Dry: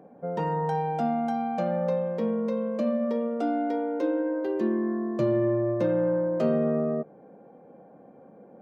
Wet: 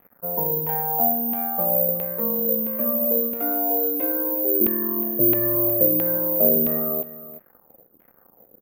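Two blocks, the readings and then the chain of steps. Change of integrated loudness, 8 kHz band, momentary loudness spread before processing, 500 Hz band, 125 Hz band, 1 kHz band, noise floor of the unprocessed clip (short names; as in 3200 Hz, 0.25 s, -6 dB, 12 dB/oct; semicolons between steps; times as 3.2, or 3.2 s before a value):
+7.5 dB, n/a, 4 LU, +0.5 dB, -2.5 dB, 0.0 dB, -52 dBFS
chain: crossover distortion -50.5 dBFS; LFO low-pass saw down 1.5 Hz 300–2700 Hz; on a send: echo 0.363 s -15.5 dB; on the sum: careless resampling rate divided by 3×, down none, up zero stuff; gain -2.5 dB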